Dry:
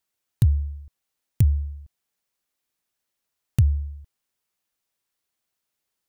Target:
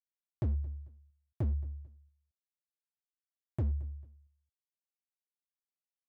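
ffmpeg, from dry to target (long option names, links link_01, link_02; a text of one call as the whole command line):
ffmpeg -i in.wav -filter_complex "[0:a]highpass=69,agate=range=-33dB:threshold=-44dB:ratio=3:detection=peak,lowpass=frequency=1600:poles=1,asoftclip=type=hard:threshold=-21.5dB,asplit=2[link_01][link_02];[link_02]aecho=0:1:222|444:0.0891|0.0258[link_03];[link_01][link_03]amix=inputs=2:normalize=0,volume=-6.5dB" out.wav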